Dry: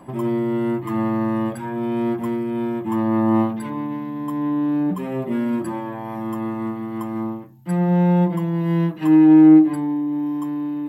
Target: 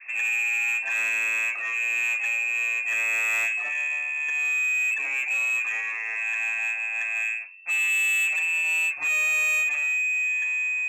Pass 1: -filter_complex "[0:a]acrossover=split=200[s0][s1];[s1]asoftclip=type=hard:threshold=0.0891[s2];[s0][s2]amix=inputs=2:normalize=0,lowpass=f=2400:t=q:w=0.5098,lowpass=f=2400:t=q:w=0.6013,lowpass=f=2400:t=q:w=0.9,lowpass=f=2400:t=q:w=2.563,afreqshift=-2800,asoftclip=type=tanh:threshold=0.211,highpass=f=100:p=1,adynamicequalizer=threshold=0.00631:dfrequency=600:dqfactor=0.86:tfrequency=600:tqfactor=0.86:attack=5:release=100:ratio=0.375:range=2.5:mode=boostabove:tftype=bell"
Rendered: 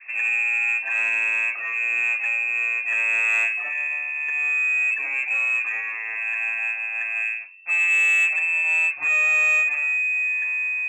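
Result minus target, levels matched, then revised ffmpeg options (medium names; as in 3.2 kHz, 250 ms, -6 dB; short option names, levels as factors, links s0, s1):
saturation: distortion -9 dB
-filter_complex "[0:a]acrossover=split=200[s0][s1];[s1]asoftclip=type=hard:threshold=0.0891[s2];[s0][s2]amix=inputs=2:normalize=0,lowpass=f=2400:t=q:w=0.5098,lowpass=f=2400:t=q:w=0.6013,lowpass=f=2400:t=q:w=0.9,lowpass=f=2400:t=q:w=2.563,afreqshift=-2800,asoftclip=type=tanh:threshold=0.0841,highpass=f=100:p=1,adynamicequalizer=threshold=0.00631:dfrequency=600:dqfactor=0.86:tfrequency=600:tqfactor=0.86:attack=5:release=100:ratio=0.375:range=2.5:mode=boostabove:tftype=bell"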